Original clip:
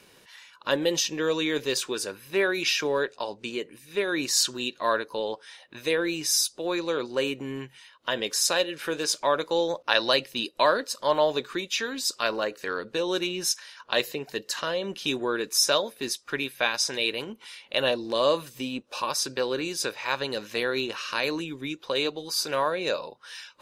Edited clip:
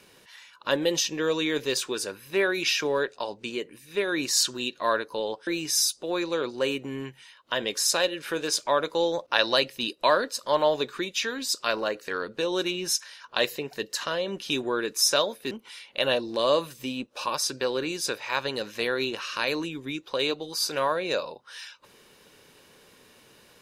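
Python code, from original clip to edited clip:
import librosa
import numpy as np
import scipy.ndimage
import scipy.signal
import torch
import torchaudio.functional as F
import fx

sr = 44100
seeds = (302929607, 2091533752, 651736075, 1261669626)

y = fx.edit(x, sr, fx.cut(start_s=5.47, length_s=0.56),
    fx.cut(start_s=16.07, length_s=1.2), tone=tone)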